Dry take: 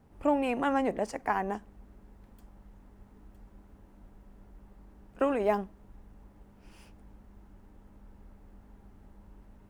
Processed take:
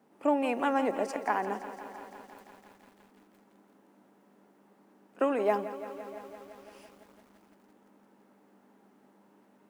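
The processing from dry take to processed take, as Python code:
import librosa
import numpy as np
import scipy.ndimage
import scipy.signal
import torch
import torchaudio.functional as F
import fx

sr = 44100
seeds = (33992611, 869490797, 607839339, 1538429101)

y = scipy.signal.sosfilt(scipy.signal.butter(4, 220.0, 'highpass', fs=sr, output='sos'), x)
y = y + 10.0 ** (-23.0 / 20.0) * np.pad(y, (int(642 * sr / 1000.0), 0))[:len(y)]
y = fx.echo_crushed(y, sr, ms=170, feedback_pct=80, bits=9, wet_db=-13.5)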